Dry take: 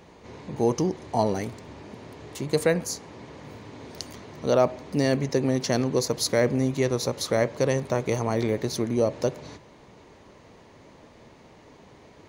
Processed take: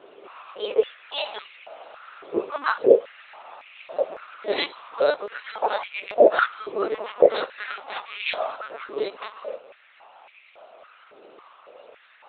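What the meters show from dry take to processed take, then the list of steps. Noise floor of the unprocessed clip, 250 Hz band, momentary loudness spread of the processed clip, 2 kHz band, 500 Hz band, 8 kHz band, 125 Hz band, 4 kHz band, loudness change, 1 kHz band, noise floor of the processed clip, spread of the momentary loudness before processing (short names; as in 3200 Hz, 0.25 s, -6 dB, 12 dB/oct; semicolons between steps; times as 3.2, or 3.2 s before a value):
-52 dBFS, -9.0 dB, 25 LU, +5.0 dB, +3.0 dB, under -40 dB, under -25 dB, +1.0 dB, +1.0 dB, +4.0 dB, -54 dBFS, 20 LU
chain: spectrum mirrored in octaves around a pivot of 1600 Hz; high shelf 2100 Hz -9 dB; LPC vocoder at 8 kHz pitch kept; stepped high-pass 3.6 Hz 390–2300 Hz; gain +8.5 dB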